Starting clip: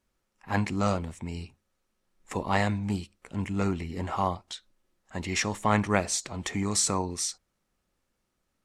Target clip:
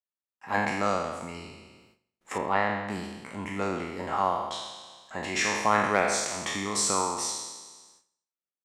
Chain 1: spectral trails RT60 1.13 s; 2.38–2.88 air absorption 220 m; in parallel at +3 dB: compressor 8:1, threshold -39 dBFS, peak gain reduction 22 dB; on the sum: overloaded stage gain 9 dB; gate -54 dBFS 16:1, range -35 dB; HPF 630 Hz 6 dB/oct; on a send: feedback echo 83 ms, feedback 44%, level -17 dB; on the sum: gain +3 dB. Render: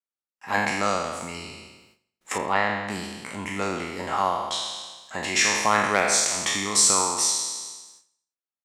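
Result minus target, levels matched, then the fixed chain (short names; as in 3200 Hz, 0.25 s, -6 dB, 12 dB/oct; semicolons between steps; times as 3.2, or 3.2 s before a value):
compressor: peak gain reduction -8.5 dB; 4000 Hz band +3.0 dB
spectral trails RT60 1.13 s; 2.38–2.88 air absorption 220 m; in parallel at +3 dB: compressor 8:1, threshold -48.5 dBFS, peak gain reduction 30.5 dB; on the sum: overloaded stage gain 9 dB; gate -54 dBFS 16:1, range -35 dB; HPF 630 Hz 6 dB/oct; high shelf 2200 Hz -9 dB; on a send: feedback echo 83 ms, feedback 44%, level -17 dB; on the sum: gain +3 dB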